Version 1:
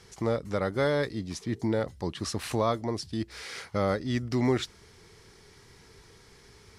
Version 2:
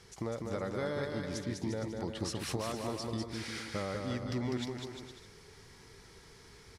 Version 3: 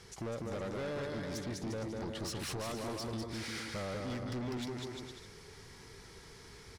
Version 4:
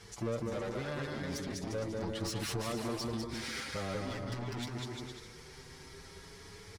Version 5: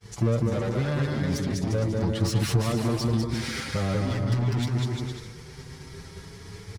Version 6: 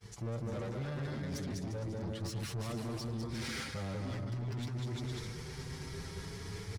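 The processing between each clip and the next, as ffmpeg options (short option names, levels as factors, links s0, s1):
-af "acompressor=threshold=0.0282:ratio=6,aecho=1:1:200|350|462.5|546.9|610.2:0.631|0.398|0.251|0.158|0.1,volume=0.708"
-af "asoftclip=type=tanh:threshold=0.0133,volume=1.33"
-filter_complex "[0:a]asplit=2[s0][s1];[s1]adelay=6.6,afreqshift=0.43[s2];[s0][s2]amix=inputs=2:normalize=1,volume=1.78"
-af "agate=range=0.0224:threshold=0.00398:ratio=3:detection=peak,equalizer=f=120:t=o:w=1.8:g=10.5,volume=2.11"
-af "areverse,acompressor=threshold=0.02:ratio=5,areverse,asoftclip=type=tanh:threshold=0.0237"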